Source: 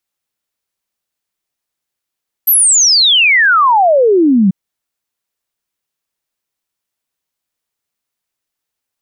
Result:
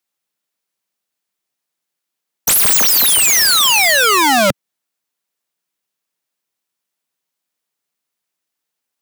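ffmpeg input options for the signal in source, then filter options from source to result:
-f lavfi -i "aevalsrc='0.501*clip(min(t,2.04-t)/0.01,0,1)*sin(2*PI*13000*2.04/log(180/13000)*(exp(log(180/13000)*t/2.04)-1))':d=2.04:s=44100"
-af "highpass=f=130:w=0.5412,highpass=f=130:w=1.3066,aeval=exprs='(mod(2.66*val(0)+1,2)-1)/2.66':c=same"

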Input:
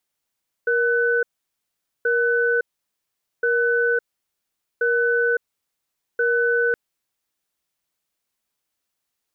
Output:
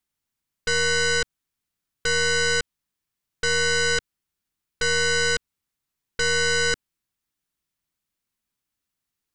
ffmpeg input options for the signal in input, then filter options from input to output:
-f lavfi -i "aevalsrc='0.106*(sin(2*PI*472*t)+sin(2*PI*1500*t))*clip(min(mod(t,1.38),0.56-mod(t,1.38))/0.005,0,1)':d=6.07:s=44100"
-af "tiltshelf=f=1100:g=4.5,aeval=exprs='0.251*(cos(1*acos(clip(val(0)/0.251,-1,1)))-cos(1*PI/2))+0.0631*(cos(6*acos(clip(val(0)/0.251,-1,1)))-cos(6*PI/2))+0.0891*(cos(8*acos(clip(val(0)/0.251,-1,1)))-cos(8*PI/2))':c=same,equalizer=f=570:t=o:w=1.6:g=-10.5"

